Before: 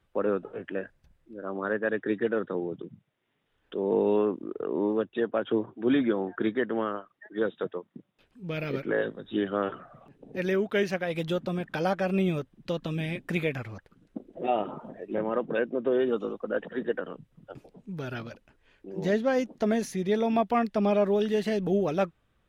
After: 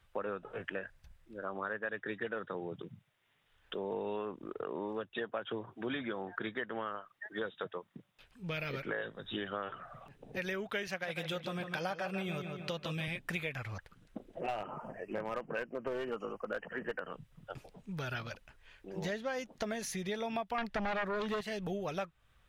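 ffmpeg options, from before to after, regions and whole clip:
ffmpeg -i in.wav -filter_complex "[0:a]asettb=1/sr,asplit=3[link_01][link_02][link_03];[link_01]atrim=end=10.874[link_04];[link_02]atrim=start=10.87:end=13.08,asetpts=PTS-STARTPTS,afade=type=in:duration=0.004:curve=qsin,afade=type=out:start_time=2.206:duration=0.004:curve=qsin,highpass=100,asplit=2[link_05][link_06];[link_06]adelay=150,lowpass=frequency=4100:poles=1,volume=-8.5dB,asplit=2[link_07][link_08];[link_08]adelay=150,lowpass=frequency=4100:poles=1,volume=0.44,asplit=2[link_09][link_10];[link_10]adelay=150,lowpass=frequency=4100:poles=1,volume=0.44,asplit=2[link_11][link_12];[link_12]adelay=150,lowpass=frequency=4100:poles=1,volume=0.44,asplit=2[link_13][link_14];[link_14]adelay=150,lowpass=frequency=4100:poles=1,volume=0.44[link_15];[link_05][link_07][link_09][link_11][link_13][link_15]amix=inputs=6:normalize=0,atrim=end_sample=97461[link_16];[link_03]atrim=start=13.076[link_17];[link_04][link_16]acrossfade=duration=0.004:curve1=hsin:curve2=qsin[link_18];[link_18][link_17]acrossfade=duration=0.004:curve1=qsin:curve2=hsin,asettb=1/sr,asplit=3[link_19][link_20][link_21];[link_19]atrim=end=14.404[link_22];[link_20]atrim=start=14.4:end=17.12,asetpts=PTS-STARTPTS,afade=type=in:duration=0.004:curve=qsin,afade=type=out:start_time=2.716:duration=0.004:curve=qsin,asuperstop=centerf=3700:order=8:qfactor=2.5,aeval=exprs='clip(val(0),-1,0.0841)':channel_layout=same[link_23];[link_21]atrim=start=17.116[link_24];[link_22][link_23]acrossfade=duration=0.004:curve1=hsin:curve2=qsin[link_25];[link_25][link_24]acrossfade=duration=0.004:curve1=qsin:curve2=hsin,asettb=1/sr,asplit=3[link_26][link_27][link_28];[link_26]atrim=end=20.584[link_29];[link_27]atrim=start=20.58:end=21.41,asetpts=PTS-STARTPTS,afade=type=in:duration=0.004:curve=qsin,afade=type=out:start_time=0.826:duration=0.004:curve=qsin,highshelf=frequency=2600:gain=-9.5,aeval=exprs='0.168*sin(PI/2*2.24*val(0)/0.168)':channel_layout=same[link_30];[link_28]atrim=start=21.406[link_31];[link_29][link_30]acrossfade=duration=0.004:curve1=hsin:curve2=qsin[link_32];[link_32][link_31]acrossfade=duration=0.004:curve1=qsin:curve2=hsin,equalizer=frequency=290:width_type=o:width=2:gain=-13.5,acompressor=threshold=-41dB:ratio=4,volume=5.5dB" out.wav

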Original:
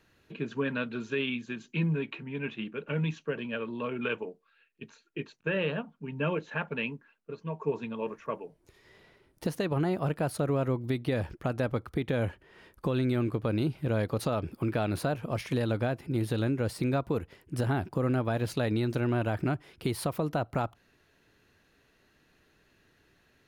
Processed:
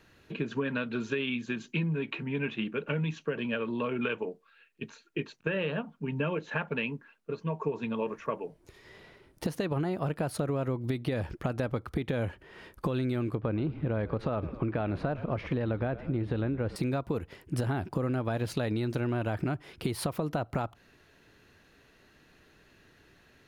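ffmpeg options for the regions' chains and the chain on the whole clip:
ffmpeg -i in.wav -filter_complex "[0:a]asettb=1/sr,asplit=3[link_01][link_02][link_03];[link_01]atrim=end=13.354[link_04];[link_02]atrim=start=13.35:end=16.76,asetpts=PTS-STARTPTS,afade=type=in:duration=0.004:curve=qsin,afade=type=out:start_time=3.406:duration=0.004:curve=qsin,lowpass=2300,asplit=6[link_05][link_06][link_07][link_08][link_09][link_10];[link_06]adelay=109,afreqshift=-42,volume=-18.5dB[link_11];[link_07]adelay=218,afreqshift=-84,volume=-23.1dB[link_12];[link_08]adelay=327,afreqshift=-126,volume=-27.7dB[link_13];[link_09]adelay=436,afreqshift=-168,volume=-32.2dB[link_14];[link_10]adelay=545,afreqshift=-210,volume=-36.8dB[link_15];[link_05][link_11][link_12][link_13][link_14][link_15]amix=inputs=6:normalize=0,atrim=end_sample=150381[link_16];[link_03]atrim=start=16.756[link_17];[link_04][link_16]acrossfade=duration=0.004:curve1=hsin:curve2=qsin[link_18];[link_18][link_17]acrossfade=duration=0.004:curve1=qsin:curve2=hsin,highshelf=frequency=9300:gain=-4,acompressor=threshold=-33dB:ratio=6,volume=5.5dB" out.wav

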